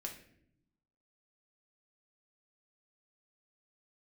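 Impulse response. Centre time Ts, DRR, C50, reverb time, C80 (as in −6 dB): 20 ms, 0.5 dB, 8.5 dB, 0.70 s, 12.0 dB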